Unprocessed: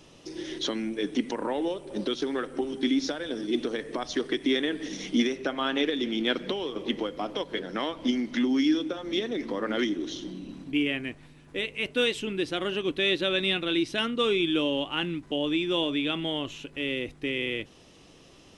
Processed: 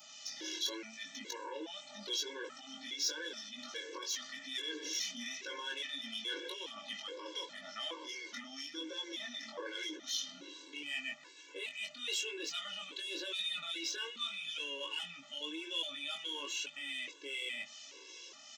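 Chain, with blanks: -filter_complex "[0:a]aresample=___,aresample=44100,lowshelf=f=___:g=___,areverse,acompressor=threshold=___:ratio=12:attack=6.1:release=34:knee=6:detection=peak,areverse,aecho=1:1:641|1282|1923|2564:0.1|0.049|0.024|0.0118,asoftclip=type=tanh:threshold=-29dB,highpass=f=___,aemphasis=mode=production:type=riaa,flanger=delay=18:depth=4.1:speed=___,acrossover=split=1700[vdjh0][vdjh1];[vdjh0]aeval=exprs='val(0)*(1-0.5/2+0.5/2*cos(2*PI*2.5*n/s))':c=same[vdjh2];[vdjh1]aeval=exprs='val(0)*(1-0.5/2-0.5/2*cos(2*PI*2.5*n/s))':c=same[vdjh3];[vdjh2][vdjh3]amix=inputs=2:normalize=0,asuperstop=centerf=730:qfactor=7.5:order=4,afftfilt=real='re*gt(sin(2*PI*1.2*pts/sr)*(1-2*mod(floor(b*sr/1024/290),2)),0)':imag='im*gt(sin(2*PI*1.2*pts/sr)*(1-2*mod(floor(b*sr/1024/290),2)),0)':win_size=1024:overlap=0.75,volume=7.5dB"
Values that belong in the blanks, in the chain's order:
16000, 340, -11.5, -40dB, 220, 0.89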